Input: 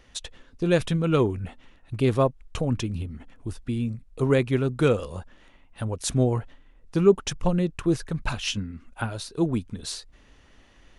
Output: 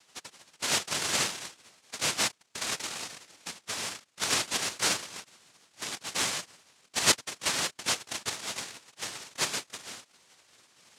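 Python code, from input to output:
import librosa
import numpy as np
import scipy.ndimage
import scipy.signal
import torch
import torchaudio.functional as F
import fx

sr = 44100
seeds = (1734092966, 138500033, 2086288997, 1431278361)

y = fx.spec_clip(x, sr, under_db=17)
y = fx.noise_vocoder(y, sr, seeds[0], bands=1)
y = y * librosa.db_to_amplitude(-7.0)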